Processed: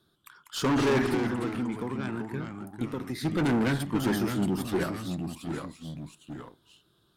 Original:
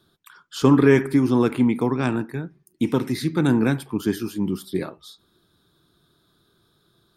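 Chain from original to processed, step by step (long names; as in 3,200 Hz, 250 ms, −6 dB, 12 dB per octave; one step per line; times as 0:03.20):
dynamic equaliser 1,500 Hz, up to +5 dB, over −38 dBFS, Q 1.1
leveller curve on the samples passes 1
0:01.09–0:03.25: downward compressor 6 to 1, threshold −26 dBFS, peak gain reduction 14.5 dB
tube saturation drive 19 dB, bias 0.3
delay with pitch and tempo change per echo 162 ms, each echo −2 semitones, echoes 2, each echo −6 dB
level −3 dB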